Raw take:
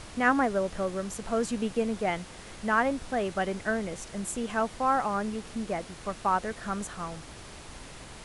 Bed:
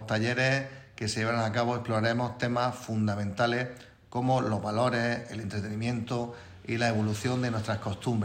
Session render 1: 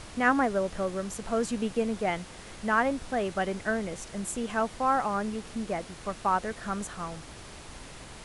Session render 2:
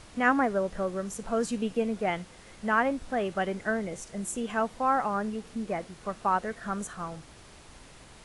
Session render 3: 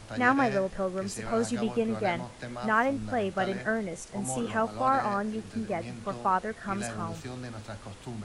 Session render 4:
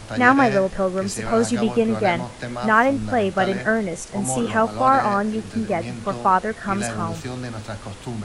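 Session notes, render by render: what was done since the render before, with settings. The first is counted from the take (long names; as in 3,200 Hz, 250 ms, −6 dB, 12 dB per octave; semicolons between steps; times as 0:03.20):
no processing that can be heard
noise reduction from a noise print 6 dB
mix in bed −10.5 dB
level +9 dB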